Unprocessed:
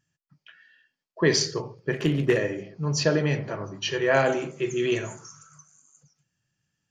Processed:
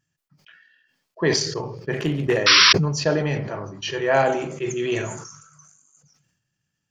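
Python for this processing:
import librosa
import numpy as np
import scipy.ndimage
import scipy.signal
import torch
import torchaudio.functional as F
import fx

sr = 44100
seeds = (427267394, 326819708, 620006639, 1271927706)

y = fx.dynamic_eq(x, sr, hz=800.0, q=2.4, threshold_db=-40.0, ratio=4.0, max_db=7)
y = fx.spec_paint(y, sr, seeds[0], shape='noise', start_s=2.46, length_s=0.27, low_hz=970.0, high_hz=5800.0, level_db=-13.0)
y = fx.transient(y, sr, attack_db=-1, sustain_db=-5)
y = fx.sustainer(y, sr, db_per_s=56.0)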